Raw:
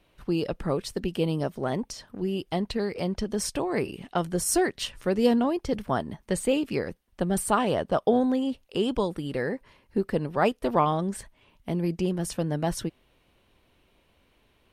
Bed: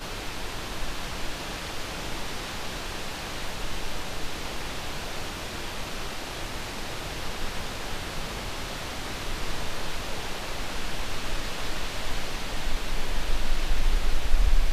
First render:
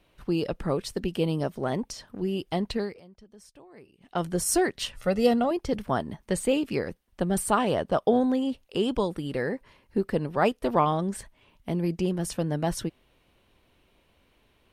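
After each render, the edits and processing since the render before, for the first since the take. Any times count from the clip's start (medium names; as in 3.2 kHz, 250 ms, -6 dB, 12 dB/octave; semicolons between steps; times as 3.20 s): 2.78–4.23 s: dip -23 dB, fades 0.23 s; 4.96–5.51 s: comb 1.5 ms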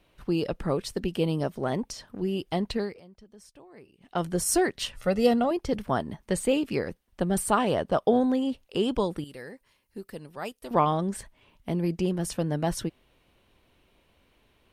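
9.24–10.71 s: pre-emphasis filter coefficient 0.8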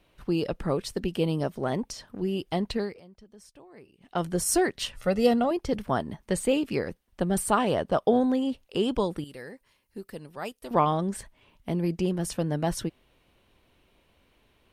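no audible change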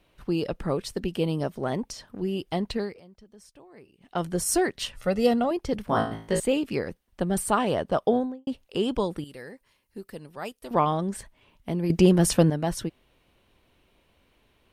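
5.87–6.40 s: flutter echo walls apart 3.1 m, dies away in 0.43 s; 8.06–8.47 s: studio fade out; 11.90–12.50 s: gain +9.5 dB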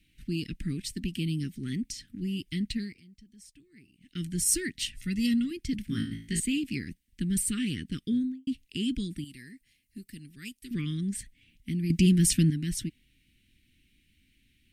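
elliptic band-stop 280–2000 Hz, stop band 60 dB; peaking EQ 8.2 kHz +3.5 dB 0.43 oct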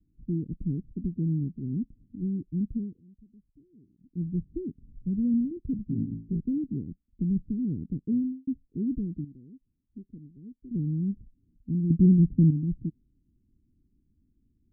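dynamic bell 150 Hz, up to +4 dB, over -41 dBFS, Q 1.6; steep low-pass 610 Hz 72 dB/octave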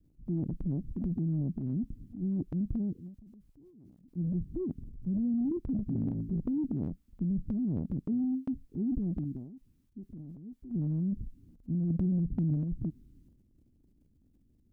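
transient shaper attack -3 dB, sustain +11 dB; compression 5:1, threshold -28 dBFS, peak gain reduction 12 dB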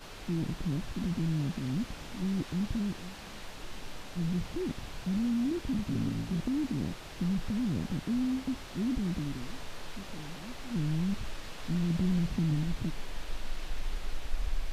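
add bed -11.5 dB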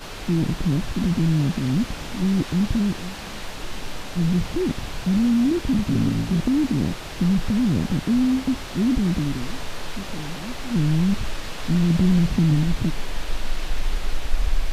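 trim +11 dB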